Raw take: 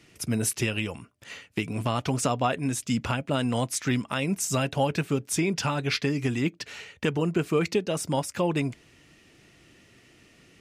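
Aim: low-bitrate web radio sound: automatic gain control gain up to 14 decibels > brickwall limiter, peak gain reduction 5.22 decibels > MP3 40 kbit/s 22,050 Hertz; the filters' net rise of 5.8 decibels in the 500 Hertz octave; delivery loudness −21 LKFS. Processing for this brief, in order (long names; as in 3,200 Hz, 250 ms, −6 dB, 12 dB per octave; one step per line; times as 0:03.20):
parametric band 500 Hz +7 dB
automatic gain control gain up to 14 dB
brickwall limiter −14 dBFS
level +6 dB
MP3 40 kbit/s 22,050 Hz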